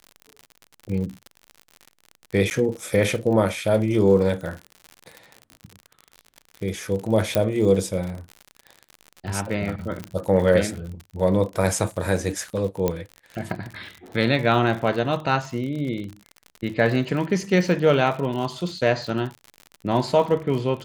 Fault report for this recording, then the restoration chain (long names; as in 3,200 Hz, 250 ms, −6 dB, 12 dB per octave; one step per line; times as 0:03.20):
surface crackle 56 per second −30 dBFS
0:02.50–0:02.51: drop-out 9.7 ms
0:07.35: click −7 dBFS
0:10.04: click −17 dBFS
0:12.88: click −9 dBFS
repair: click removal
repair the gap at 0:02.50, 9.7 ms